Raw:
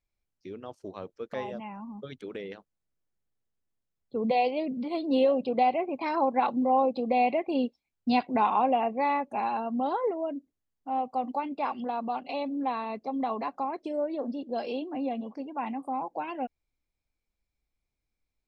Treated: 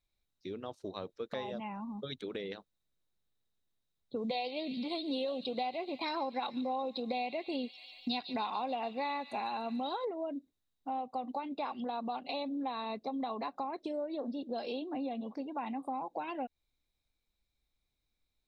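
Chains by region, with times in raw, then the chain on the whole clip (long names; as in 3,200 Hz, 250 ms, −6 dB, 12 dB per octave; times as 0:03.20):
0:04.16–0:10.05: high-shelf EQ 3,100 Hz +11 dB + delay with a high-pass on its return 145 ms, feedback 68%, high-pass 3,100 Hz, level −10.5 dB
whole clip: parametric band 3,800 Hz +15 dB 0.2 octaves; downward compressor 4 to 1, threshold −35 dBFS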